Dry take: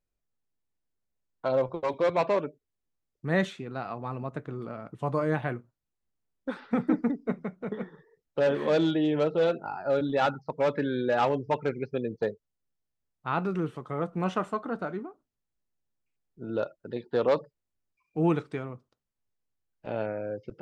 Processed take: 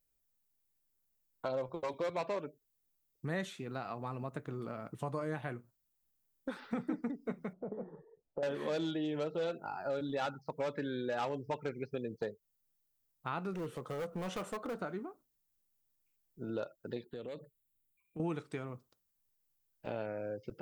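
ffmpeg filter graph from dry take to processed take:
-filter_complex "[0:a]asettb=1/sr,asplit=3[s0][s1][s2];[s0]atrim=end=7.534[s3];[s1]atrim=start=7.53:end=8.43,asetpts=PTS-STARTPTS,afade=t=in:d=0.004:c=qsin,afade=t=out:st=0.896:d=0.004:c=qsin,acompressor=threshold=0.01:ratio=2:attack=3.2:release=140:knee=1:detection=peak,lowpass=f=690:t=q:w=2[s4];[s2]atrim=start=8.426[s5];[s3][s4]acrossfade=d=0.004:c1=hsin:c2=qsin[s6];[s6][s5]acrossfade=d=0.004:c1=qsin:c2=hsin,asettb=1/sr,asplit=3[s7][s8][s9];[s7]atrim=end=13.534[s10];[s8]atrim=start=13.53:end=14.77,asetpts=PTS-STARTPTS,afade=t=in:d=0.004:c=qsin,afade=t=out:st=1.236:d=0.004:c=qsin,equalizer=f=500:w=4:g=9,acompressor=threshold=0.0224:ratio=1.5:attack=3.2:release=140:knee=1:detection=peak,volume=29.9,asoftclip=hard,volume=0.0335[s11];[s9]atrim=start=14.766[s12];[s10][s11]acrossfade=d=0.004:c1=hsin:c2=qsin[s13];[s13][s12]acrossfade=d=0.004:c1=qsin:c2=hsin,asettb=1/sr,asplit=3[s14][s15][s16];[s14]atrim=end=17.044[s17];[s15]atrim=start=17.04:end=18.2,asetpts=PTS-STARTPTS,afade=t=in:d=0.004:c=qsin,afade=t=out:st=1.156:d=0.004:c=qsin,equalizer=f=1000:w=1:g=-14.5,acompressor=threshold=0.01:ratio=4:attack=3.2:release=140:knee=1:detection=peak,asuperstop=centerf=5400:order=4:qfactor=1.7[s18];[s16]atrim=start=18.196[s19];[s17][s18]acrossfade=d=0.004:c1=hsin:c2=qsin[s20];[s20][s19]acrossfade=d=0.004:c1=qsin:c2=hsin,aemphasis=mode=production:type=50fm,acompressor=threshold=0.0158:ratio=2.5,volume=0.841"

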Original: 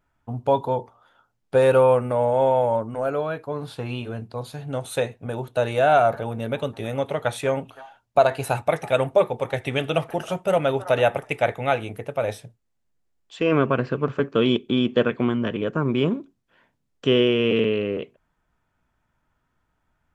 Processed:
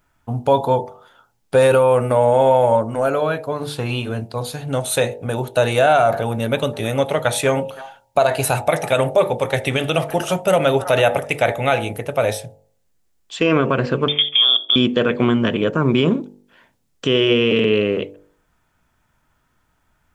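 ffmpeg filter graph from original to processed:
-filter_complex "[0:a]asettb=1/sr,asplit=3[s0][s1][s2];[s0]atrim=end=14.084[s3];[s1]atrim=start=14.08:end=14.76,asetpts=PTS-STARTPTS,afade=t=in:d=0.004:c=qsin,afade=t=out:st=0.676:d=0.004:c=qsin,equalizer=f=500:t=o:w=0.85:g=9,acompressor=threshold=0.1:ratio=8:attack=3.2:release=140:knee=1:detection=peak,lowpass=f=3100:t=q:w=0.5098,lowpass=f=3100:t=q:w=0.6013,lowpass=f=3100:t=q:w=0.9,lowpass=f=3100:t=q:w=2.563,afreqshift=-3700[s4];[s2]atrim=start=14.756[s5];[s3][s4]acrossfade=d=0.004:c1=hsin:c2=qsin[s6];[s6][s5]acrossfade=d=0.004:c1=qsin:c2=hsin,highshelf=f=4000:g=8,bandreject=f=48.94:t=h:w=4,bandreject=f=97.88:t=h:w=4,bandreject=f=146.82:t=h:w=4,bandreject=f=195.76:t=h:w=4,bandreject=f=244.7:t=h:w=4,bandreject=f=293.64:t=h:w=4,bandreject=f=342.58:t=h:w=4,bandreject=f=391.52:t=h:w=4,bandreject=f=440.46:t=h:w=4,bandreject=f=489.4:t=h:w=4,bandreject=f=538.34:t=h:w=4,bandreject=f=587.28:t=h:w=4,bandreject=f=636.22:t=h:w=4,bandreject=f=685.16:t=h:w=4,bandreject=f=734.1:t=h:w=4,bandreject=f=783.04:t=h:w=4,bandreject=f=831.98:t=h:w=4,bandreject=f=880.92:t=h:w=4,bandreject=f=929.86:t=h:w=4,alimiter=level_in=3.76:limit=0.891:release=50:level=0:latency=1,volume=0.596"

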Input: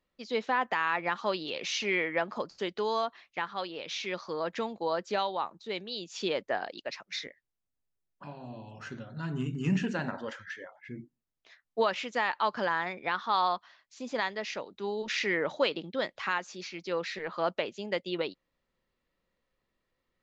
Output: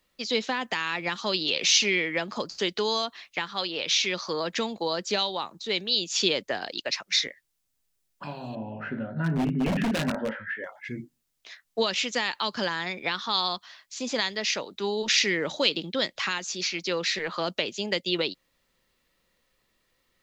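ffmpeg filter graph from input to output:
-filter_complex "[0:a]asettb=1/sr,asplit=3[s0][s1][s2];[s0]atrim=end=8.554[s3];[s1]atrim=start=8.55:end=10.64,asetpts=PTS-STARTPTS,afade=t=in:d=0.004:c=qsin,afade=t=out:st=2.086:d=0.004:c=qsin,highpass=110,equalizer=f=230:t=q:w=4:g=7,equalizer=f=610:t=q:w=4:g=6,equalizer=f=1100:t=q:w=4:g=-7,lowpass=f=2000:w=0.5412,lowpass=f=2000:w=1.3066,asplit=2[s4][s5];[s5]adelay=19,volume=0.562[s6];[s4][s6]amix=inputs=2:normalize=0,atrim=end_sample=92169,aeval=exprs='0.0501*(abs(mod(val(0)/0.0501+3,4)-2)-1)':c=same[s7];[s2]atrim=start=10.636[s8];[s3][s7]acrossfade=d=0.004:c1=hsin:c2=qsin[s9];[s9][s8]acrossfade=d=0.004:c1=qsin:c2=hsin,highshelf=f=2300:g=11,acrossover=split=380|3000[s10][s11][s12];[s11]acompressor=threshold=0.0158:ratio=6[s13];[s10][s13][s12]amix=inputs=3:normalize=0,volume=2"

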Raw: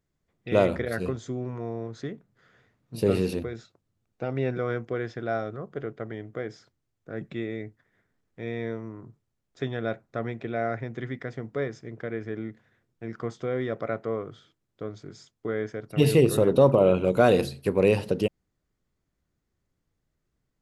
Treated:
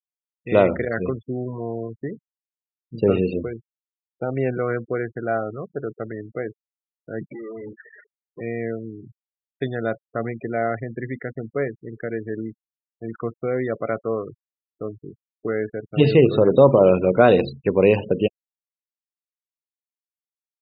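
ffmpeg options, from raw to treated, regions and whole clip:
-filter_complex "[0:a]asettb=1/sr,asplit=3[s0][s1][s2];[s0]atrim=end=7.324[s3];[s1]atrim=start=7.32:end=8.41,asetpts=PTS-STARTPTS,afade=t=in:d=0.004:c=qsin,afade=t=out:st=1.086:d=0.004:c=qsin,highpass=f=120:w=0.5412,highpass=f=120:w=1.3066,acompressor=threshold=0.00562:ratio=8:attack=3.2:release=140:knee=1:detection=peak,asplit=2[s4][s5];[s5]highpass=f=720:p=1,volume=79.4,asoftclip=type=tanh:threshold=0.0282[s6];[s4][s6]amix=inputs=2:normalize=0,lowpass=f=1100:p=1,volume=0.501[s7];[s2]atrim=start=8.406[s8];[s3][s7]acrossfade=d=0.004:c1=hsin:c2=qsin[s9];[s9][s8]acrossfade=d=0.004:c1=qsin:c2=hsin,lowpass=4200,lowshelf=f=81:g=-8.5,afftfilt=real='re*gte(hypot(re,im),0.0178)':imag='im*gte(hypot(re,im),0.0178)':win_size=1024:overlap=0.75,volume=1.88"

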